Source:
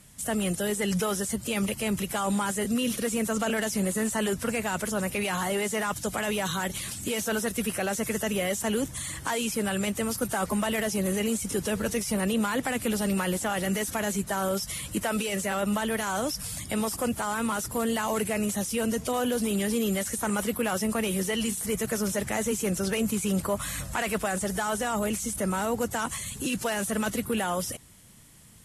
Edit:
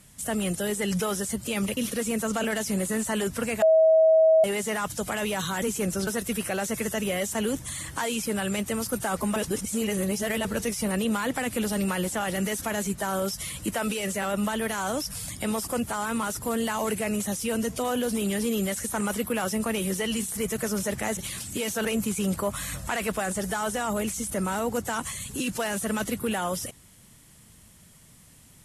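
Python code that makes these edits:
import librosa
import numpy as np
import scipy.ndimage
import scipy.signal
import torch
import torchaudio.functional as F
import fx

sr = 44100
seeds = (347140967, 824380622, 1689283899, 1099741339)

y = fx.edit(x, sr, fx.cut(start_s=1.77, length_s=1.06),
    fx.bleep(start_s=4.68, length_s=0.82, hz=641.0, db=-14.5),
    fx.swap(start_s=6.68, length_s=0.68, other_s=22.46, other_length_s=0.45),
    fx.reverse_span(start_s=10.65, length_s=1.09), tone=tone)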